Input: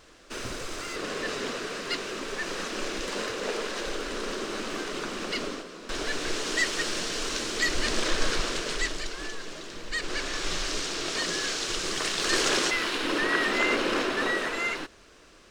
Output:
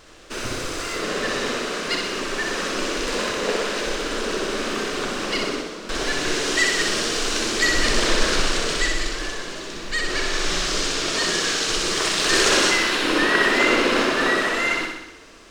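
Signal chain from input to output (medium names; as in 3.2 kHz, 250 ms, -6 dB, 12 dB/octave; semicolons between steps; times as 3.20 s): flutter echo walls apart 10.7 m, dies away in 0.9 s; trim +5.5 dB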